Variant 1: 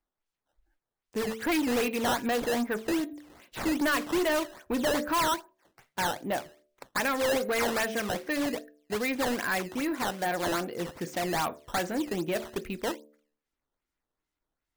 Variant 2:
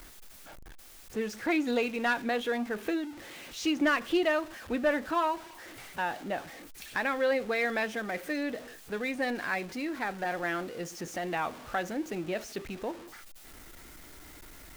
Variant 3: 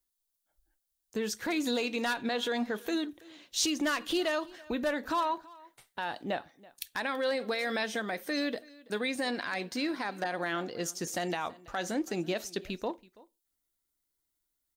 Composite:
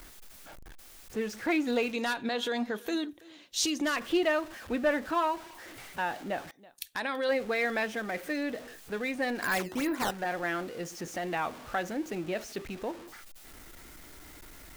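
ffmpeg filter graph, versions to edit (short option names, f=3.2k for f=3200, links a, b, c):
-filter_complex "[2:a]asplit=2[a][b];[1:a]asplit=4[c][d][e][f];[c]atrim=end=1.932[g];[a]atrim=start=1.928:end=3.962[h];[d]atrim=start=3.958:end=6.512[i];[b]atrim=start=6.508:end=7.292[j];[e]atrim=start=7.288:end=9.422[k];[0:a]atrim=start=9.418:end=10.112[l];[f]atrim=start=10.108[m];[g][h]acrossfade=d=0.004:c1=hsin:c2=hsin[n];[n][i]acrossfade=d=0.004:c1=hsin:c2=hsin[o];[o][j]acrossfade=d=0.004:c1=hsin:c2=hsin[p];[p][k]acrossfade=d=0.004:c1=hsin:c2=hsin[q];[q][l]acrossfade=d=0.004:c1=hsin:c2=hsin[r];[r][m]acrossfade=d=0.004:c1=hsin:c2=hsin"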